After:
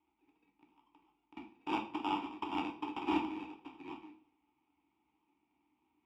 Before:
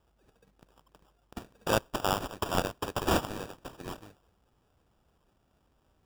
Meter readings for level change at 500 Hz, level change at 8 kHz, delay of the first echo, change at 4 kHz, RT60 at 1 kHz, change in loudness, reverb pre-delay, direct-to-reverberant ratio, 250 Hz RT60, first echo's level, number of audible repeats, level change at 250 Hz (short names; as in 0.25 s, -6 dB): -13.5 dB, under -25 dB, none, -10.0 dB, 0.50 s, -6.5 dB, 3 ms, 2.5 dB, 0.60 s, none, none, -1.0 dB